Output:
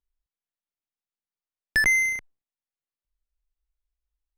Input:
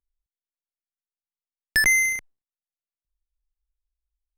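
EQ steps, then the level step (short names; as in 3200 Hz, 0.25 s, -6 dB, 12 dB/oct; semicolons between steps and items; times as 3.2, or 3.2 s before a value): high shelf 5400 Hz -11 dB; 0.0 dB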